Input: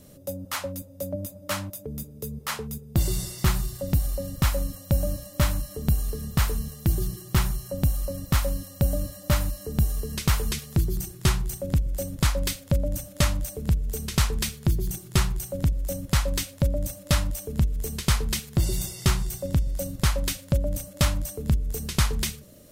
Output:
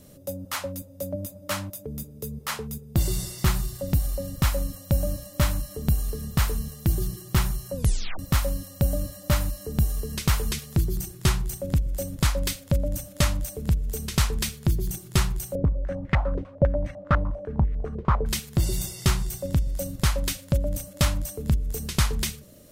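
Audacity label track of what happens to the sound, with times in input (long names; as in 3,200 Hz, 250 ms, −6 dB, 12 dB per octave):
7.750000	7.750000	tape stop 0.44 s
15.550000	18.260000	low-pass on a step sequencer 10 Hz 480–2,000 Hz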